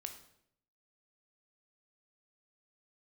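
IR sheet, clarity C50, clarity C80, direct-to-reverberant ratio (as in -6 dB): 9.0 dB, 12.5 dB, 5.5 dB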